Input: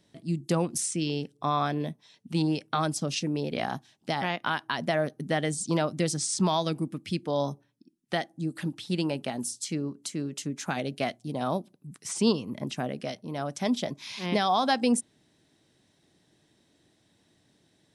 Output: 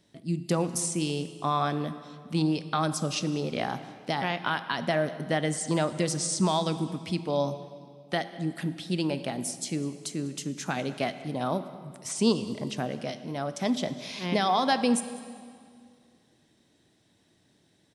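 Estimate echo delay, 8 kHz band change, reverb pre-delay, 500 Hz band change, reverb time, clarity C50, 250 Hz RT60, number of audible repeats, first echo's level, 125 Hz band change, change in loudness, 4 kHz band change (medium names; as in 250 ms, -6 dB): 199 ms, +0.5 dB, 20 ms, +0.5 dB, 2.1 s, 12.0 dB, 2.4 s, 1, -21.5 dB, +0.5 dB, +0.5 dB, 0.0 dB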